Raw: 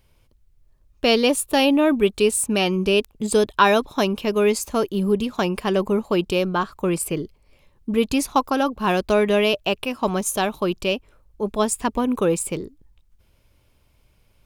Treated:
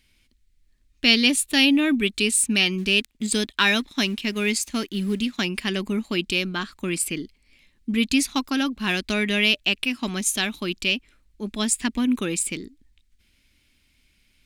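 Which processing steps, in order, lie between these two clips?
2.78–5.39 G.711 law mismatch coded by A; ten-band EQ 125 Hz -8 dB, 250 Hz +10 dB, 500 Hz -10 dB, 1000 Hz -8 dB, 2000 Hz +11 dB, 4000 Hz +8 dB, 8000 Hz +7 dB; gain -5 dB

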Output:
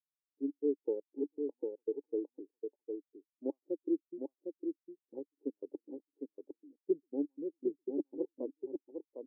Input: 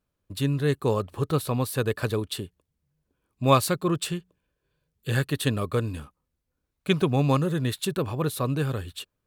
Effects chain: Wiener smoothing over 41 samples; HPF 170 Hz 12 dB/oct; treble ducked by the level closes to 500 Hz, closed at -22.5 dBFS; vibrato 1 Hz 12 cents; LFO high-pass square 4 Hz 490–3100 Hz; vocal tract filter u; echo 0.756 s -3.5 dB; spectral expander 1.5:1; gain +4 dB

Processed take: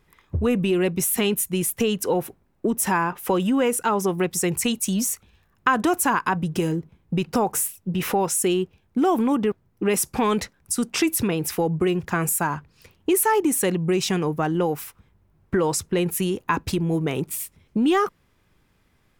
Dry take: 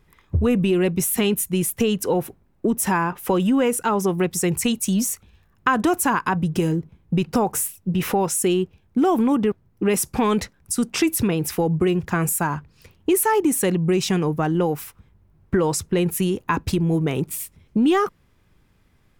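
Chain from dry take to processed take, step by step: low shelf 230 Hz -5.5 dB

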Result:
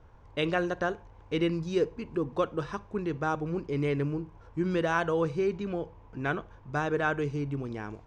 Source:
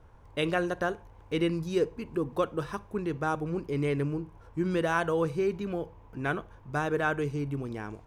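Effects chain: LPF 7000 Hz 24 dB/oct

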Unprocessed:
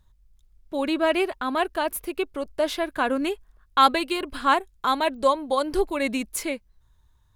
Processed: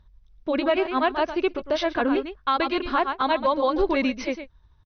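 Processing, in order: brick-wall FIR low-pass 6200 Hz; high shelf 4100 Hz -6.5 dB; echo 0.184 s -12.5 dB; granular stretch 0.66×, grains 0.163 s; limiter -18 dBFS, peak gain reduction 12 dB; gain +5 dB

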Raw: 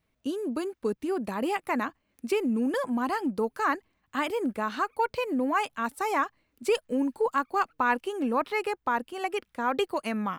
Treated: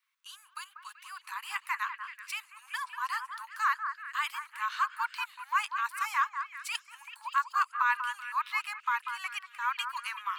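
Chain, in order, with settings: steep high-pass 990 Hz 72 dB/oct; delay with a stepping band-pass 0.191 s, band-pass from 1300 Hz, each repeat 0.7 oct, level -7 dB

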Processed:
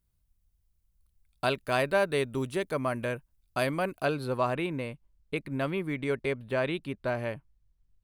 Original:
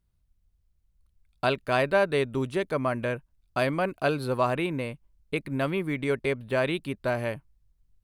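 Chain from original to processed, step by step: high shelf 7200 Hz +10.5 dB, from 4.05 s -2.5 dB, from 6.53 s -8 dB; gain -3 dB

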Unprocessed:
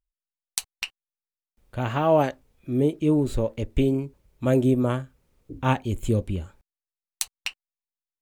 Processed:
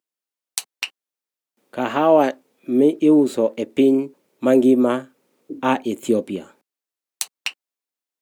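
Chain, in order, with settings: HPF 250 Hz 24 dB/oct; low shelf 420 Hz +6.5 dB; in parallel at -1.5 dB: limiter -12.5 dBFS, peak gain reduction 9 dB

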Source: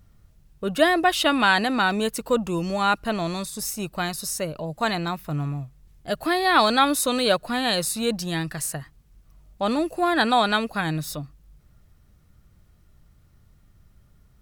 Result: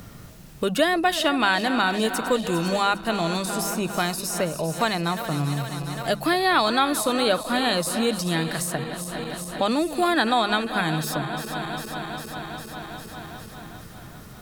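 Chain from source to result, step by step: regenerating reverse delay 0.201 s, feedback 76%, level -14 dB; notches 50/100/150/200 Hz; three-band squash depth 70%

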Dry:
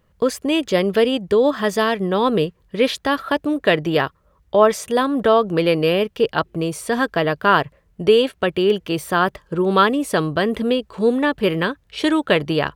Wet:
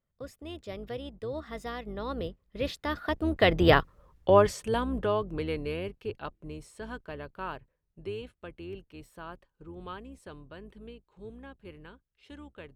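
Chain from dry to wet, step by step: octaver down 2 oct, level -2 dB; Doppler pass-by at 3.88, 24 m/s, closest 6.1 m; high shelf 8900 Hz -4 dB

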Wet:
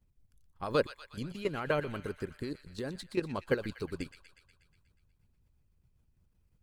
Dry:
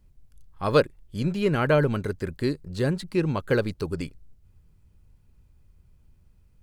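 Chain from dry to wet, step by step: level quantiser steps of 10 dB; thin delay 0.121 s, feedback 65%, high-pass 1500 Hz, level -9 dB; harmonic-percussive split harmonic -9 dB; gain -3 dB

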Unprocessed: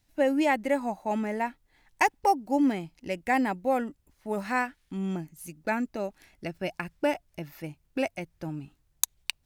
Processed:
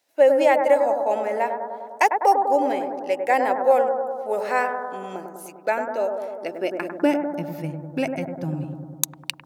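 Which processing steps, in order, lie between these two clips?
analogue delay 0.1 s, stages 1024, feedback 72%, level -5.5 dB; high-pass sweep 510 Hz -> 130 Hz, 6.32–7.93; gain +2.5 dB

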